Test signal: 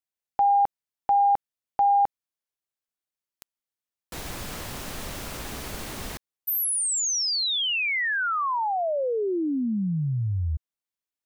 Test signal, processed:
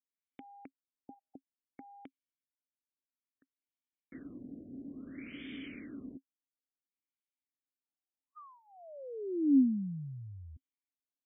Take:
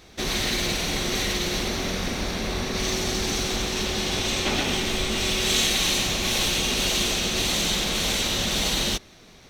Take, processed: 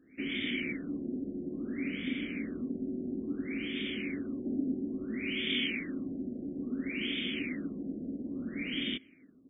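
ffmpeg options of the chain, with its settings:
-filter_complex "[0:a]asplit=3[s0][s1][s2];[s0]bandpass=f=270:t=q:w=8,volume=1[s3];[s1]bandpass=f=2290:t=q:w=8,volume=0.501[s4];[s2]bandpass=f=3010:t=q:w=8,volume=0.355[s5];[s3][s4][s5]amix=inputs=3:normalize=0,afftfilt=real='re*lt(b*sr/1024,750*pow(3700/750,0.5+0.5*sin(2*PI*0.59*pts/sr)))':imag='im*lt(b*sr/1024,750*pow(3700/750,0.5+0.5*sin(2*PI*0.59*pts/sr)))':win_size=1024:overlap=0.75,volume=1.68"

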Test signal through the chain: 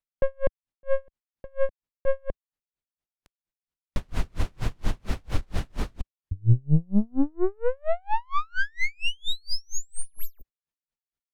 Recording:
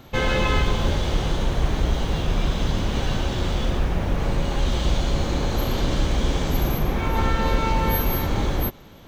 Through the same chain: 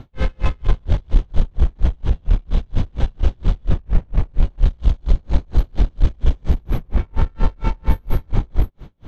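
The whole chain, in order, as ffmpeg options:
-af "aeval=exprs='(tanh(15.8*val(0)+0.35)-tanh(0.35))/15.8':c=same,aemphasis=mode=reproduction:type=bsi,aeval=exprs='val(0)*pow(10,-39*(0.5-0.5*cos(2*PI*4.3*n/s))/20)':c=same,volume=1.58"

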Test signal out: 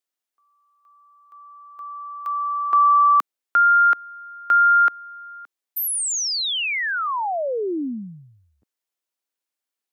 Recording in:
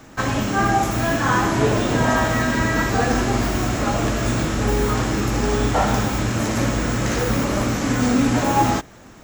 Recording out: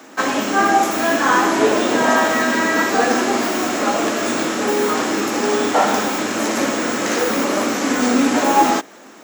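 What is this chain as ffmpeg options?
-af "highpass=f=250:w=0.5412,highpass=f=250:w=1.3066,volume=1.68"

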